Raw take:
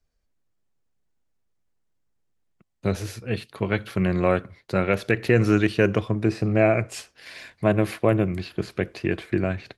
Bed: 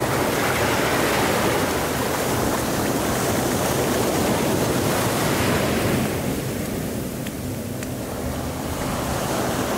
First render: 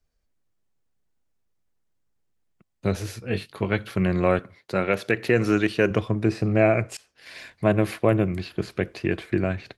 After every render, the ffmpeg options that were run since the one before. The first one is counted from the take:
-filter_complex "[0:a]asettb=1/sr,asplit=3[s0][s1][s2];[s0]atrim=end=3.214[s3];[s1]atrim=start=3.21:end=3.65,asetpts=PTS-STARTPTS,afade=t=in:d=0.004:c=qsin,afade=t=out:st=0.436:d=0.004:c=qsin,asplit=2[s4][s5];[s5]adelay=21,volume=0.447[s6];[s4][s6]amix=inputs=2:normalize=0,atrim=end_sample=19404[s7];[s2]atrim=start=3.646[s8];[s3][s7]acrossfade=d=0.004:c1=hsin:c2=qsin[s9];[s9][s8]acrossfade=d=0.004:c1=qsin:c2=hsin,asettb=1/sr,asplit=3[s10][s11][s12];[s10]atrim=end=4.394[s13];[s11]atrim=start=4.39:end=5.91,asetpts=PTS-STARTPTS,afade=t=in:d=0.004:c=qsin,afade=t=out:st=1.516:d=0.004:c=qsin,highpass=f=190:p=1[s14];[s12]atrim=start=5.906[s15];[s13][s14]acrossfade=d=0.004:c1=hsin:c2=qsin[s16];[s16][s15]acrossfade=d=0.004:c1=qsin:c2=hsin,asplit=2[s17][s18];[s17]atrim=end=6.97,asetpts=PTS-STARTPTS,afade=t=out:st=6.966:d=0.004:c=hsin:silence=0.0668344[s19];[s18]atrim=start=6.97,asetpts=PTS-STARTPTS,afade=t=in:d=0.4:silence=0.0668344[s20];[s19][s20]concat=n=2:v=0:a=1"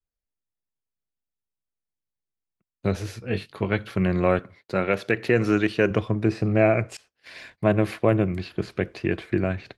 -af "agate=range=0.158:threshold=0.00355:ratio=16:detection=peak,highshelf=f=7900:g=-8.5"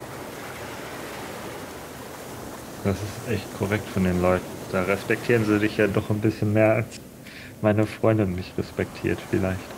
-filter_complex "[1:a]volume=0.178[s0];[0:a][s0]amix=inputs=2:normalize=0"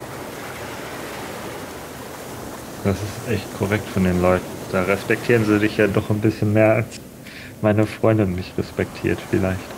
-af "volume=1.58,alimiter=limit=0.708:level=0:latency=1"

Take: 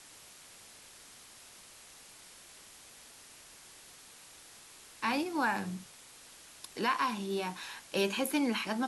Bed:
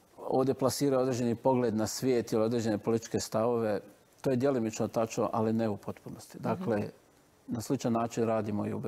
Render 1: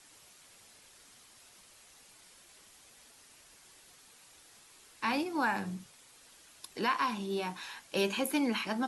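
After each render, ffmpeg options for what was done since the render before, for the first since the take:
-af "afftdn=nr=6:nf=-55"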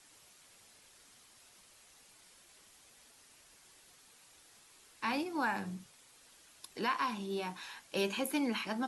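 -af "volume=0.708"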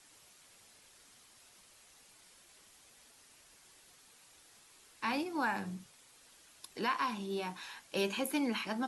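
-af anull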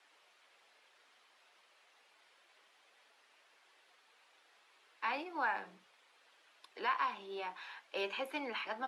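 -filter_complex "[0:a]highpass=f=220:p=1,acrossover=split=380 3700:gain=0.0794 1 0.0891[s0][s1][s2];[s0][s1][s2]amix=inputs=3:normalize=0"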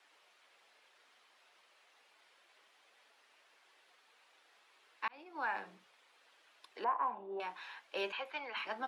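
-filter_complex "[0:a]asettb=1/sr,asplit=3[s0][s1][s2];[s0]atrim=end=6.844[s3];[s1]atrim=start=6.84:end=7.4,asetpts=PTS-STARTPTS,afade=t=in:d=0.004:c=qsin,afade=t=out:st=0.556:d=0.004:c=qsin,lowpass=f=790:t=q:w=2.1[s4];[s2]atrim=start=7.396[s5];[s3][s4]acrossfade=d=0.004:c1=hsin:c2=qsin[s6];[s6][s5]acrossfade=d=0.004:c1=qsin:c2=hsin,asettb=1/sr,asplit=3[s7][s8][s9];[s7]atrim=end=8.124[s10];[s8]atrim=start=8.12:end=8.57,asetpts=PTS-STARTPTS,afade=t=in:d=0.004:c=qsin,afade=t=out:st=0.446:d=0.004:c=qsin,acrossover=split=540 5400:gain=0.141 1 0.0891[s11][s12][s13];[s11][s12][s13]amix=inputs=3:normalize=0[s14];[s9]atrim=start=8.566[s15];[s10][s14]acrossfade=d=0.004:c1=hsin:c2=qsin[s16];[s16][s15]acrossfade=d=0.004:c1=qsin:c2=hsin,asplit=2[s17][s18];[s17]atrim=end=5.08,asetpts=PTS-STARTPTS,afade=t=out:st=5.076:d=0.004:c=hsin[s19];[s18]atrim=start=5.08,asetpts=PTS-STARTPTS,afade=t=in:d=0.51[s20];[s19][s20]concat=n=2:v=0:a=1"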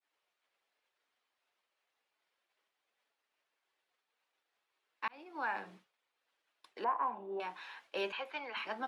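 -af "agate=range=0.0224:threshold=0.00158:ratio=3:detection=peak,lowshelf=f=230:g=8"

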